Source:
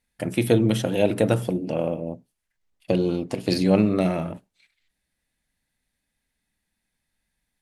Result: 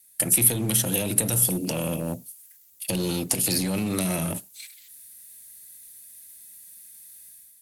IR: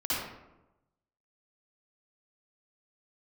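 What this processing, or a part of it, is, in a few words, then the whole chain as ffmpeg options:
FM broadcast chain: -filter_complex "[0:a]highpass=46,dynaudnorm=f=150:g=5:m=9dB,acrossover=split=230|700|2100[a][b][c][d];[a]acompressor=threshold=-22dB:ratio=4[e];[b]acompressor=threshold=-30dB:ratio=4[f];[c]acompressor=threshold=-36dB:ratio=4[g];[d]acompressor=threshold=-42dB:ratio=4[h];[e][f][g][h]amix=inputs=4:normalize=0,aemphasis=mode=production:type=75fm,alimiter=limit=-17.5dB:level=0:latency=1:release=11,asoftclip=type=hard:threshold=-21dB,lowpass=f=15k:w=0.5412,lowpass=f=15k:w=1.3066,aemphasis=mode=production:type=75fm"

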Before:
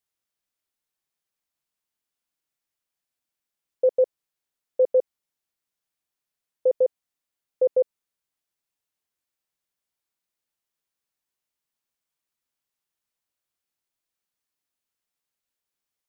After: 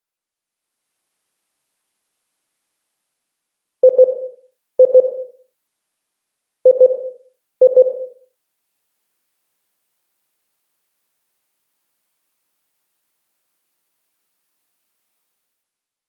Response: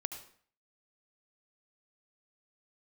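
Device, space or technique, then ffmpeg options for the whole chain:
far-field microphone of a smart speaker: -filter_complex "[1:a]atrim=start_sample=2205[a];[0:a][a]afir=irnorm=-1:irlink=0,highpass=160,dynaudnorm=f=110:g=13:m=16dB" -ar 48000 -c:a libopus -b:a 32k

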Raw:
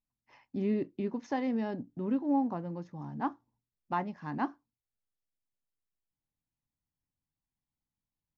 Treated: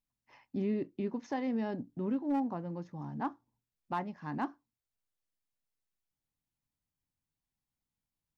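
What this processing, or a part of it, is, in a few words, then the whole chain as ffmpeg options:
clipper into limiter: -af "asoftclip=type=hard:threshold=-22.5dB,alimiter=level_in=1.5dB:limit=-24dB:level=0:latency=1:release=489,volume=-1.5dB"

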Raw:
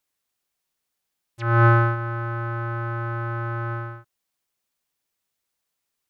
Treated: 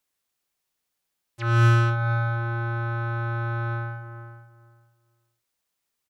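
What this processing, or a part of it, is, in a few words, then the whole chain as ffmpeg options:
one-band saturation: -filter_complex "[0:a]asettb=1/sr,asplit=3[a][b][c];[a]atrim=end=1.414[d];[b]atrim=start=1.41:end=1.9,asetpts=PTS-STARTPTS,afade=t=in:d=0.004:c=qsin,afade=t=out:st=0.486:d=0.004:c=qsin,highshelf=f=2.4k:g=6.5[e];[c]atrim=start=1.896[f];[d][e]acrossfade=d=0.004:c1=hsin:c2=qsin[g];[g][f]acrossfade=d=0.004:c1=qsin:c2=hsin,asplit=2[h][i];[i]adelay=462,lowpass=f=1.8k:p=1,volume=-11.5dB,asplit=2[j][k];[k]adelay=462,lowpass=f=1.8k:p=1,volume=0.2,asplit=2[l][m];[m]adelay=462,lowpass=f=1.8k:p=1,volume=0.2[n];[h][j][l][n]amix=inputs=4:normalize=0,acrossover=split=250|2100[o][p][q];[p]asoftclip=type=tanh:threshold=-25dB[r];[o][r][q]amix=inputs=3:normalize=0"

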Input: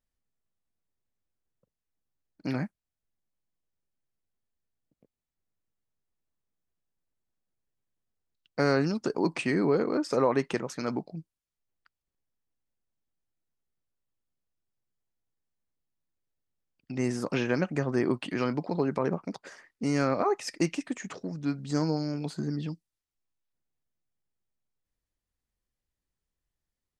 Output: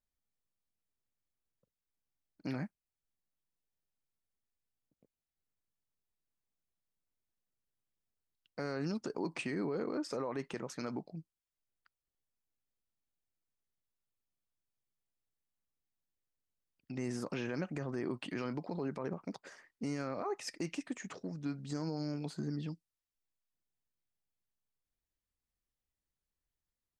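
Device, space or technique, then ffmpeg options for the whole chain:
stacked limiters: -af "alimiter=limit=-18dB:level=0:latency=1:release=86,alimiter=limit=-22dB:level=0:latency=1:release=55,volume=-6dB"

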